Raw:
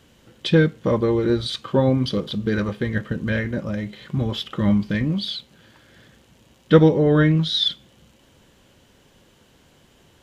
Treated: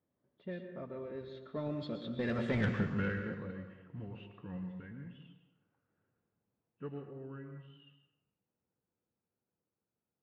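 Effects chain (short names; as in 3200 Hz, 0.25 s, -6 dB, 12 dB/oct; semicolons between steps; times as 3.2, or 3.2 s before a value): nonlinear frequency compression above 2600 Hz 1.5:1; Doppler pass-by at 2.61, 39 m/s, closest 2.9 m; HPF 93 Hz; in parallel at 0 dB: negative-ratio compressor -31 dBFS, ratio -0.5; on the sum: soft clip -22.5 dBFS, distortion -12 dB; on a send at -6 dB: reverb RT60 1.0 s, pre-delay 0.108 s; on the sum: low-pass opened by the level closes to 1200 Hz, open at -27 dBFS; gain -3.5 dB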